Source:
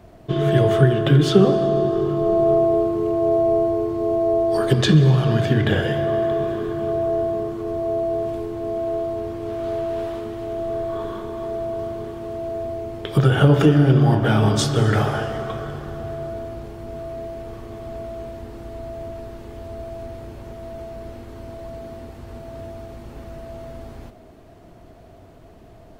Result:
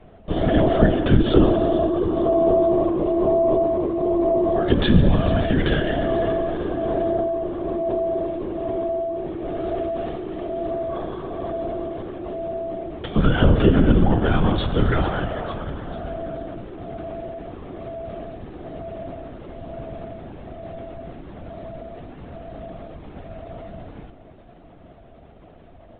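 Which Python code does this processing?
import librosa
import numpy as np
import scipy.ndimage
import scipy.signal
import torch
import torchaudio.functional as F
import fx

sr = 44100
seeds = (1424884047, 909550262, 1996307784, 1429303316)

y = fx.echo_feedback(x, sr, ms=447, feedback_pct=56, wet_db=-17.5)
y = fx.lpc_vocoder(y, sr, seeds[0], excitation='whisper', order=16)
y = y * librosa.db_to_amplitude(-1.0)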